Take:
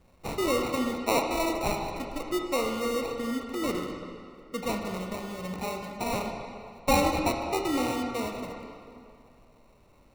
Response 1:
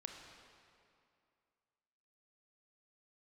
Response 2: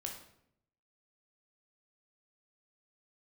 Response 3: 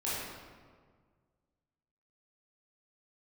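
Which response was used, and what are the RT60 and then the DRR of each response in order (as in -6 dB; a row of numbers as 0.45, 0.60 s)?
1; 2.5, 0.70, 1.7 s; 2.5, 1.0, -9.5 dB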